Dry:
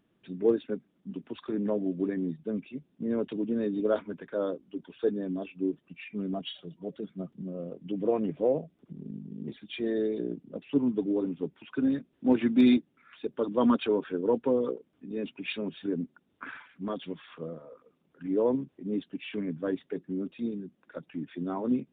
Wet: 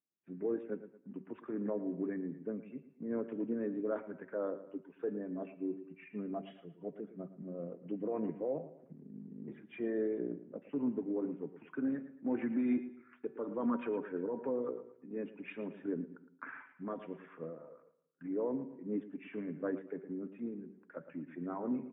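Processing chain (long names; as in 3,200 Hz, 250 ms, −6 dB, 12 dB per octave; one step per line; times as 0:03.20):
Butterworth low-pass 2,200 Hz 36 dB per octave
hum removal 191 Hz, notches 32
noise gate −57 dBFS, range −24 dB
high-pass filter 72 Hz
low-shelf EQ 190 Hz −7.5 dB
brickwall limiter −22.5 dBFS, peak gain reduction 8.5 dB
repeating echo 113 ms, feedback 35%, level −14 dB
on a send at −21 dB: convolution reverb RT60 0.75 s, pre-delay 4 ms
on the sum: amplitude modulation by smooth noise, depth 50%
level −2 dB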